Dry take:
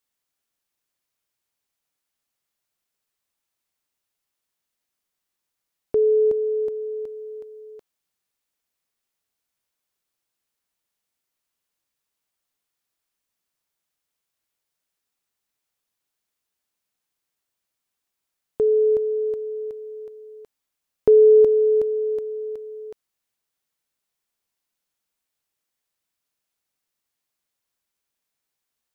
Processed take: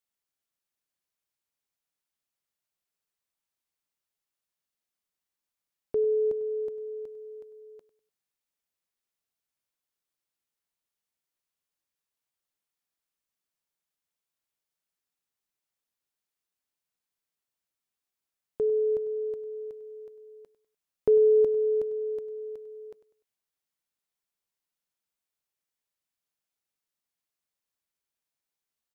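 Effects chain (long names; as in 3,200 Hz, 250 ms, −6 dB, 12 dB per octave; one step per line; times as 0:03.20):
repeating echo 99 ms, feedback 35%, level −16 dB
on a send at −23 dB: convolution reverb, pre-delay 3 ms
on the sum: level −7.5 dB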